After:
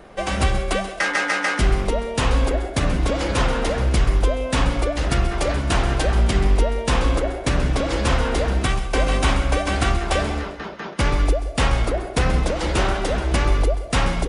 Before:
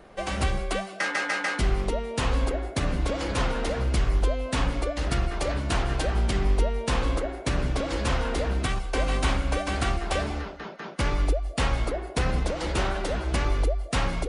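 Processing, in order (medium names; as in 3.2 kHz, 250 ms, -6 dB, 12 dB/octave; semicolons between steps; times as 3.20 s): band-stop 4.3 kHz, Q 30; on a send: feedback delay 133 ms, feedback 38%, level -13.5 dB; on the sum: trim +6 dB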